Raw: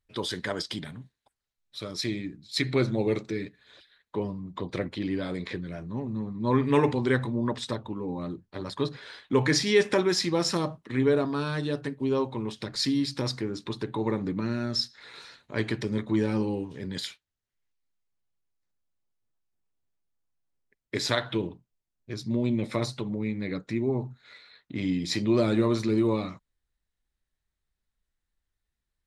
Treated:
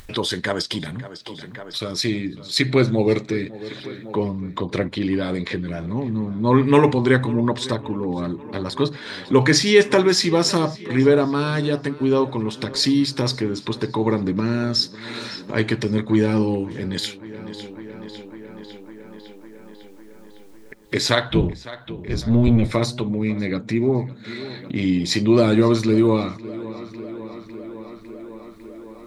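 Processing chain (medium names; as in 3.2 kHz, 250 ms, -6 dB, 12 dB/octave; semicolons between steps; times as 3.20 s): 21.29–22.75 s: octave divider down 1 oct, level +3 dB; tape echo 553 ms, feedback 59%, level -19 dB, low-pass 4.5 kHz; upward compressor, threshold -31 dBFS; trim +8 dB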